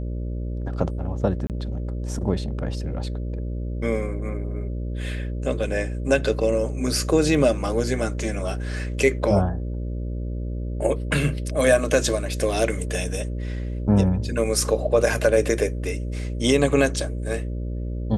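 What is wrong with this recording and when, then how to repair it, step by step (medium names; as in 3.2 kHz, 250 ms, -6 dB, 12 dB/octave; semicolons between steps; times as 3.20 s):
buzz 60 Hz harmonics 10 -28 dBFS
1.47–1.50 s: dropout 28 ms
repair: de-hum 60 Hz, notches 10; interpolate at 1.47 s, 28 ms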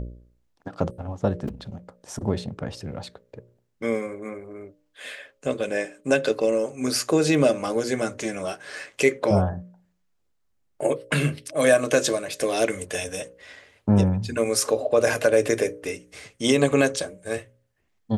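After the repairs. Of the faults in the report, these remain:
nothing left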